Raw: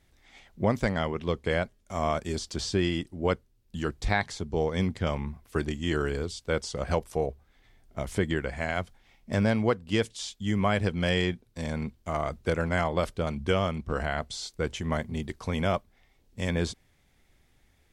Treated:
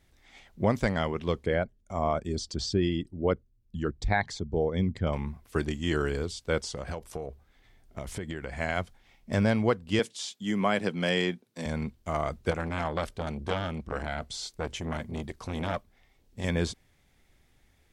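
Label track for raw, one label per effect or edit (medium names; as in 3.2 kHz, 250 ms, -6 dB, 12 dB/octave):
1.460000	5.130000	resonances exaggerated exponent 1.5
6.580000	8.550000	compression, threshold -31 dBFS
9.990000	11.660000	high-pass 160 Hz 24 dB/octave
12.510000	16.440000	transformer saturation saturates under 950 Hz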